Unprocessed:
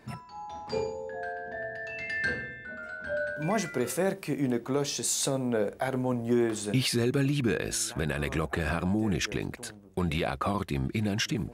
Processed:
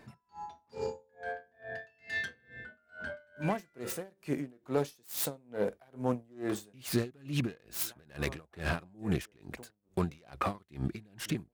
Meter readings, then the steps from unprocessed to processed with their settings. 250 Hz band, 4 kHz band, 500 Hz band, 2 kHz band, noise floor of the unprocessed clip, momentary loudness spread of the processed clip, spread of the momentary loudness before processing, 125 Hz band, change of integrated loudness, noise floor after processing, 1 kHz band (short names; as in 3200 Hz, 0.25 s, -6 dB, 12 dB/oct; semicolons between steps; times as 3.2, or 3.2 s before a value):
-7.5 dB, -9.5 dB, -6.5 dB, -7.5 dB, -49 dBFS, 12 LU, 10 LU, -6.5 dB, -7.0 dB, -73 dBFS, -5.0 dB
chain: self-modulated delay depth 0.12 ms; dB-linear tremolo 2.3 Hz, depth 32 dB